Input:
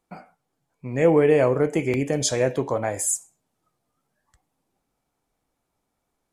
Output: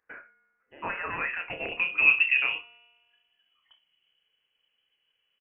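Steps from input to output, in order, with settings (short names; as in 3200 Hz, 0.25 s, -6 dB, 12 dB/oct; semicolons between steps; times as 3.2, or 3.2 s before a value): thirty-one-band EQ 100 Hz +5 dB, 160 Hz +9 dB, 800 Hz -6 dB; in parallel at +1.5 dB: compressor, threshold -25 dBFS, peak gain reduction 12.5 dB; on the sum: overloaded stage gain 8 dB; high-pass sweep 1400 Hz -> 110 Hz, 1.22–4.18; resonator 210 Hz, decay 1.6 s, mix 60%; inverted band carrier 2700 Hz; on a send: early reflections 35 ms -8.5 dB, 70 ms -16 dB; on the sum: wide varispeed 1.17×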